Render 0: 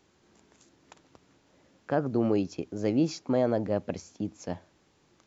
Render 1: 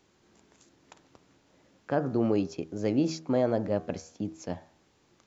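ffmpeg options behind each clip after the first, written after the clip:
ffmpeg -i in.wav -af "bandreject=frequency=80.17:width_type=h:width=4,bandreject=frequency=160.34:width_type=h:width=4,bandreject=frequency=240.51:width_type=h:width=4,bandreject=frequency=320.68:width_type=h:width=4,bandreject=frequency=400.85:width_type=h:width=4,bandreject=frequency=481.02:width_type=h:width=4,bandreject=frequency=561.19:width_type=h:width=4,bandreject=frequency=641.36:width_type=h:width=4,bandreject=frequency=721.53:width_type=h:width=4,bandreject=frequency=801.7:width_type=h:width=4,bandreject=frequency=881.87:width_type=h:width=4,bandreject=frequency=962.04:width_type=h:width=4,bandreject=frequency=1042.21:width_type=h:width=4,bandreject=frequency=1122.38:width_type=h:width=4,bandreject=frequency=1202.55:width_type=h:width=4,bandreject=frequency=1282.72:width_type=h:width=4,bandreject=frequency=1362.89:width_type=h:width=4,bandreject=frequency=1443.06:width_type=h:width=4,bandreject=frequency=1523.23:width_type=h:width=4,bandreject=frequency=1603.4:width_type=h:width=4,bandreject=frequency=1683.57:width_type=h:width=4,bandreject=frequency=1763.74:width_type=h:width=4,bandreject=frequency=1843.91:width_type=h:width=4" out.wav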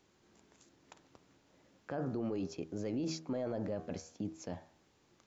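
ffmpeg -i in.wav -af "alimiter=level_in=1dB:limit=-24dB:level=0:latency=1:release=11,volume=-1dB,volume=-4dB" out.wav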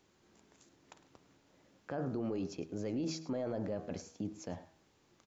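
ffmpeg -i in.wav -af "aecho=1:1:106:0.141" out.wav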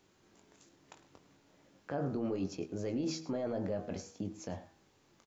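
ffmpeg -i in.wav -filter_complex "[0:a]asplit=2[link_01][link_02];[link_02]adelay=21,volume=-7.5dB[link_03];[link_01][link_03]amix=inputs=2:normalize=0,volume=1dB" out.wav

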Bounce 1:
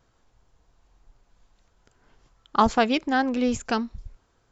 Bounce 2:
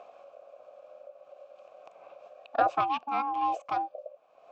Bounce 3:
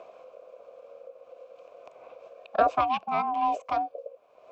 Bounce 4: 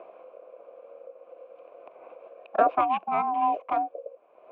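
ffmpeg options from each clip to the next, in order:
ffmpeg -i in.wav -filter_complex "[0:a]aeval=exprs='val(0)*sin(2*PI*560*n/s)':channel_layout=same,acompressor=mode=upward:threshold=-34dB:ratio=2.5,asplit=3[link_01][link_02][link_03];[link_01]bandpass=frequency=730:width_type=q:width=8,volume=0dB[link_04];[link_02]bandpass=frequency=1090:width_type=q:width=8,volume=-6dB[link_05];[link_03]bandpass=frequency=2440:width_type=q:width=8,volume=-9dB[link_06];[link_04][link_05][link_06]amix=inputs=3:normalize=0,volume=8dB" out.wav
ffmpeg -i in.wav -af "afreqshift=-47,volume=2.5dB" out.wav
ffmpeg -i in.wav -af "highpass=130,equalizer=frequency=130:width_type=q:width=4:gain=-8,equalizer=frequency=340:width_type=q:width=4:gain=8,equalizer=frequency=860:width_type=q:width=4:gain=3,lowpass=frequency=2700:width=0.5412,lowpass=frequency=2700:width=1.3066" out.wav

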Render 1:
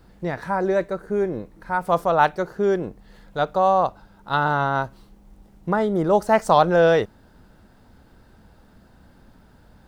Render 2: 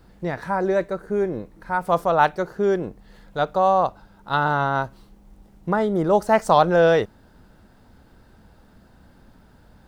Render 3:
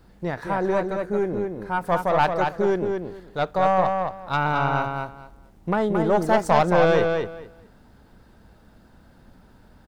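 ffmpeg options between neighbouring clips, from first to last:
ffmpeg -i in.wav -af anull out.wav
ffmpeg -i in.wav -filter_complex "[0:a]aeval=exprs='(tanh(3.55*val(0)+0.4)-tanh(0.4))/3.55':channel_layout=same,asplit=2[link_01][link_02];[link_02]adelay=222,lowpass=frequency=4900:poles=1,volume=-4.5dB,asplit=2[link_03][link_04];[link_04]adelay=222,lowpass=frequency=4900:poles=1,volume=0.19,asplit=2[link_05][link_06];[link_06]adelay=222,lowpass=frequency=4900:poles=1,volume=0.19[link_07];[link_03][link_05][link_07]amix=inputs=3:normalize=0[link_08];[link_01][link_08]amix=inputs=2:normalize=0" out.wav

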